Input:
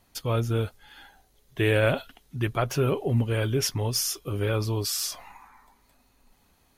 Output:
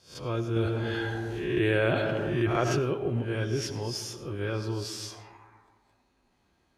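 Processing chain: spectral swells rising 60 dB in 0.40 s; HPF 47 Hz; air absorption 71 m; small resonant body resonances 350/1600 Hz, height 10 dB, ringing for 90 ms; reverb RT60 1.5 s, pre-delay 45 ms, DRR 10 dB; 0.56–2.79 fast leveller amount 70%; gain -6.5 dB

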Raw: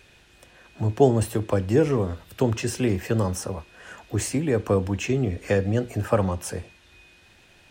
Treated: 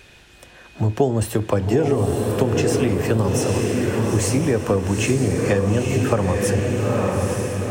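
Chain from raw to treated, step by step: on a send: diffused feedback echo 0.904 s, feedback 53%, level -3.5 dB; on the sum: compressor 6:1, threshold -21 dBFS, peak gain reduction 10 dB; gain +6.5 dB

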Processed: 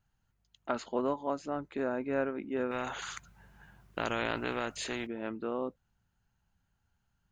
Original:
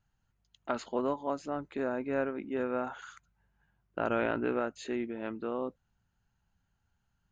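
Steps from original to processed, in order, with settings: 2.71–5.07 spectral compressor 2:1

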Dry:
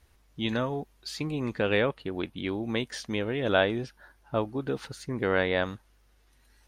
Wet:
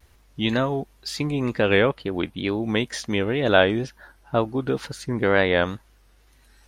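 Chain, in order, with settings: vibrato 2.1 Hz 80 cents; gain +6.5 dB

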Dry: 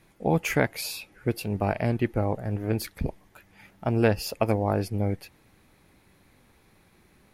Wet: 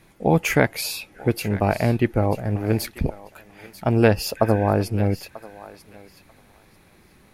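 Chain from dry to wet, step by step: spectral repair 4.4–4.69, 1500–3800 Hz after; thinning echo 0.94 s, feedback 20%, high-pass 860 Hz, level -14.5 dB; gain +5.5 dB

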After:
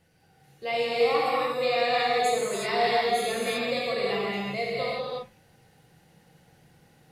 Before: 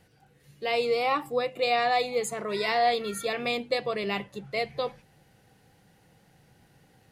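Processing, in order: non-linear reverb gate 0.39 s flat, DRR -6.5 dB; gain -5.5 dB

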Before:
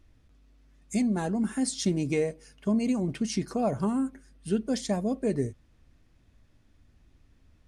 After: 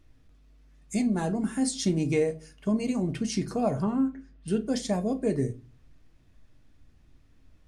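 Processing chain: 3.82–4.48 air absorption 150 m; shoebox room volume 130 m³, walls furnished, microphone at 0.52 m

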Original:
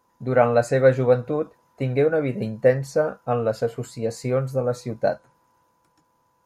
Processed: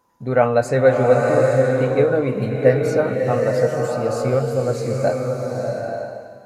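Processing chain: bloom reverb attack 0.86 s, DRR 0.5 dB; gain +1.5 dB

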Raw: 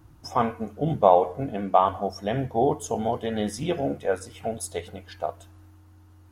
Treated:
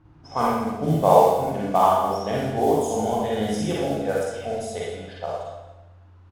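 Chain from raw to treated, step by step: modulation noise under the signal 24 dB; Schroeder reverb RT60 1 s, DRR -5 dB; low-pass opened by the level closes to 2900 Hz, open at -15.5 dBFS; on a send: echo 0.222 s -17.5 dB; on the sum: gain -3 dB

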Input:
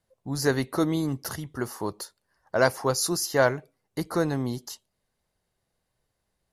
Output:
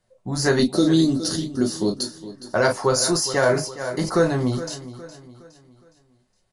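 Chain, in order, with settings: 0.59–2.03 ten-band EQ 125 Hz -5 dB, 250 Hz +9 dB, 1000 Hz -11 dB, 2000 Hz -10 dB, 4000 Hz +11 dB, 8000 Hz +3 dB; reverb, pre-delay 5 ms, DRR 1.5 dB; downsampling 22050 Hz; feedback echo 0.414 s, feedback 41%, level -15 dB; maximiser +12 dB; 3.11–4.15 sustainer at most 93 dB/s; gain -7.5 dB

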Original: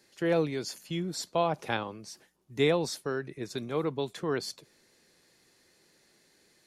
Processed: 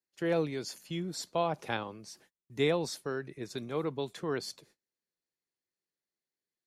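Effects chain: gate -59 dBFS, range -29 dB; gain -3 dB

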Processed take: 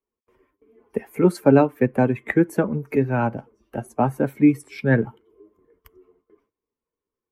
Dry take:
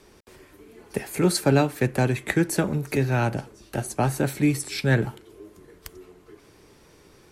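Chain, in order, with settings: per-bin expansion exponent 1.5; gate with hold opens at -55 dBFS; graphic EQ 125/250/500/1000/2000/4000/8000 Hz +4/+12/+10/+9/+8/-7/-6 dB; gain -6 dB

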